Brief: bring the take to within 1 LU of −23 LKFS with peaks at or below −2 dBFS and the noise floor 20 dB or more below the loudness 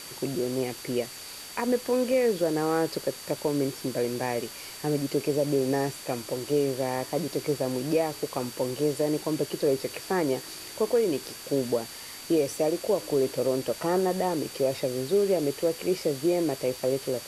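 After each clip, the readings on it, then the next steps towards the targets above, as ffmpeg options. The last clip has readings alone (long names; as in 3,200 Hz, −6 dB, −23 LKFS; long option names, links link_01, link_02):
interfering tone 4,600 Hz; level of the tone −46 dBFS; background noise floor −42 dBFS; target noise floor −48 dBFS; integrated loudness −28.0 LKFS; sample peak −13.5 dBFS; target loudness −23.0 LKFS
→ -af "bandreject=frequency=4600:width=30"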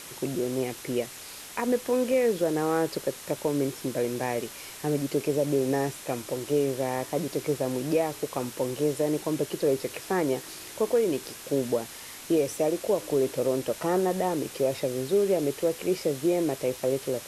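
interfering tone none found; background noise floor −43 dBFS; target noise floor −48 dBFS
→ -af "afftdn=noise_reduction=6:noise_floor=-43"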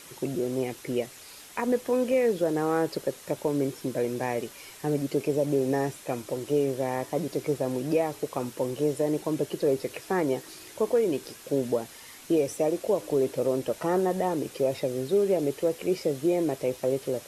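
background noise floor −48 dBFS; integrated loudness −28.0 LKFS; sample peak −13.5 dBFS; target loudness −23.0 LKFS
→ -af "volume=5dB"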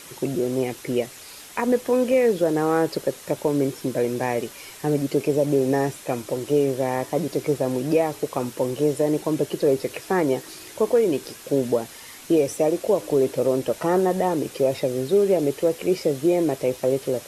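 integrated loudness −23.0 LKFS; sample peak −8.5 dBFS; background noise floor −43 dBFS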